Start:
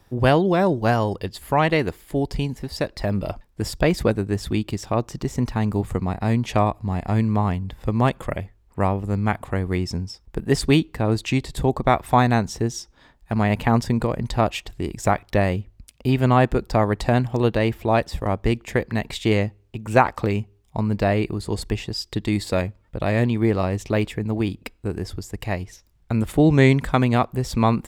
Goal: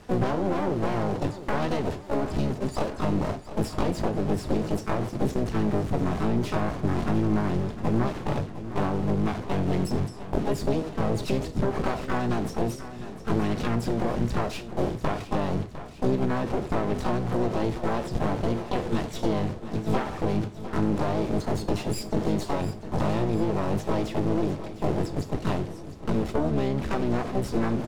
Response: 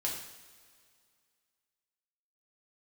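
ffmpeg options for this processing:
-filter_complex "[0:a]aeval=exprs='val(0)+0.5*0.0944*sgn(val(0))':c=same,lowpass=f=6500:w=0.5412,lowpass=f=6500:w=1.3066,agate=range=0.0501:threshold=0.0794:ratio=16:detection=peak,lowshelf=f=85:g=-11,asplit=3[s0][s1][s2];[s1]asetrate=66075,aresample=44100,atempo=0.66742,volume=0.794[s3];[s2]asetrate=88200,aresample=44100,atempo=0.5,volume=0.501[s4];[s0][s3][s4]amix=inputs=3:normalize=0,acompressor=threshold=0.0447:ratio=6,aeval=exprs='clip(val(0),-1,0.0133)':c=same,tiltshelf=f=840:g=6.5,aecho=1:1:705|1410|2115|2820|3525|4230:0.211|0.123|0.0711|0.0412|0.0239|0.0139,asplit=2[s5][s6];[1:a]atrim=start_sample=2205,afade=t=out:st=0.14:d=0.01,atrim=end_sample=6615[s7];[s6][s7]afir=irnorm=-1:irlink=0,volume=0.335[s8];[s5][s8]amix=inputs=2:normalize=0"

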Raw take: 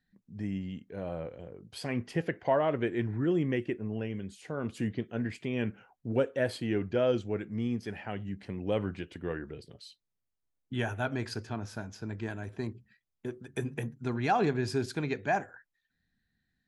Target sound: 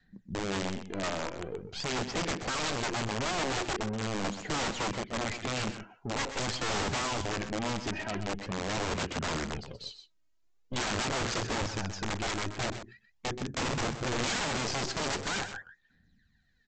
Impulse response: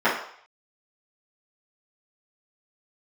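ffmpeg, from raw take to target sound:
-af "aeval=exprs='(tanh(79.4*val(0)+0.4)-tanh(0.4))/79.4':c=same,adynamicequalizer=threshold=0.00224:dfrequency=210:dqfactor=1.8:tfrequency=210:tqfactor=1.8:attack=5:release=100:ratio=0.375:range=2:mode=boostabove:tftype=bell,aphaser=in_gain=1:out_gain=1:delay=3.2:decay=0.61:speed=0.44:type=sinusoidal,aresample=16000,aeval=exprs='(mod(50.1*val(0)+1,2)-1)/50.1':c=same,aresample=44100,aecho=1:1:127:0.299,volume=2.24"

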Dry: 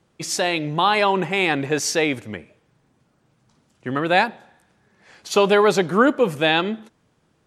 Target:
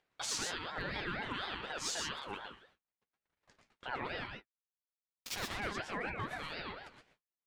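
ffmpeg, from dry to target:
-filter_complex "[0:a]agate=range=0.00141:threshold=0.00158:ratio=16:detection=peak,bandpass=f=1600:t=q:w=1.5:csg=0,acompressor=threshold=0.0141:ratio=10,alimiter=level_in=3.35:limit=0.0631:level=0:latency=1:release=13,volume=0.299,acompressor=mode=upward:threshold=0.00251:ratio=2.5,equalizer=f=1600:w=1.1:g=-10,asettb=1/sr,asplit=3[s0][s1][s2];[s0]atrim=end=4.284[s3];[s1]atrim=start=4.28:end=5.6,asetpts=PTS-STARTPTS,afade=t=in:d=0.004:c=qsin,afade=t=out:st=1.316:d=0.004:c=qsin,acrusher=bits=6:mix=0:aa=0.5[s4];[s2]atrim=start=5.596[s5];[s3][s4]acrossfade=d=0.004:c1=hsin:c2=qsin[s6];[s6][s5]acrossfade=d=0.004:c1=qsin:c2=hsin,asoftclip=type=hard:threshold=0.0126,flanger=delay=7.5:depth=1.8:regen=39:speed=1.5:shape=sinusoidal,aecho=1:1:116|132:0.562|0.335,aeval=exprs='val(0)*sin(2*PI*920*n/s+920*0.35/4.1*sin(2*PI*4.1*n/s))':c=same,volume=5.62"

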